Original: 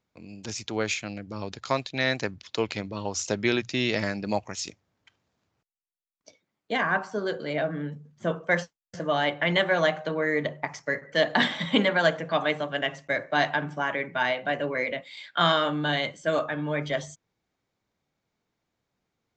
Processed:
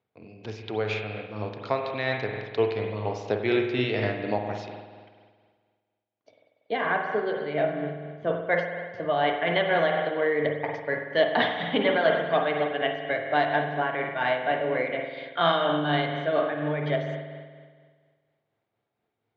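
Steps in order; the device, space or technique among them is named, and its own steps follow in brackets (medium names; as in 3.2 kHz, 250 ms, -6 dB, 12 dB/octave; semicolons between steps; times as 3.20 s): combo amplifier with spring reverb and tremolo (spring tank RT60 1.7 s, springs 47 ms, chirp 55 ms, DRR 2.5 dB; tremolo 4.2 Hz, depth 32%; cabinet simulation 100–3800 Hz, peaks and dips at 110 Hz +8 dB, 180 Hz -6 dB, 430 Hz +7 dB, 710 Hz +6 dB); trim -2 dB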